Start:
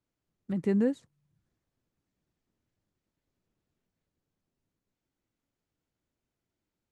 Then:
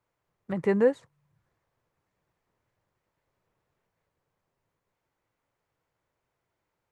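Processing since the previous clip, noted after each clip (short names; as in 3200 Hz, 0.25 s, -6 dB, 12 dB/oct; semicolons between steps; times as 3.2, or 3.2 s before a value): ten-band EQ 125 Hz +5 dB, 250 Hz -6 dB, 500 Hz +8 dB, 1000 Hz +11 dB, 2000 Hz +7 dB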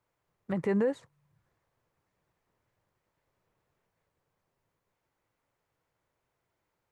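limiter -20.5 dBFS, peak gain reduction 8.5 dB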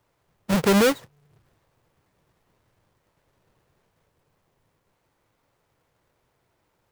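half-waves squared off; gain +6 dB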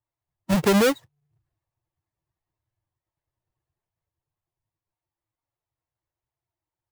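per-bin expansion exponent 1.5; compressor, threshold -21 dBFS, peak gain reduction 4.5 dB; gain +4.5 dB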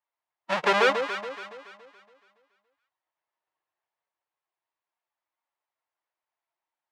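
BPF 780–2900 Hz; echo with dull and thin repeats by turns 0.141 s, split 1000 Hz, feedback 63%, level -5.5 dB; gain +5 dB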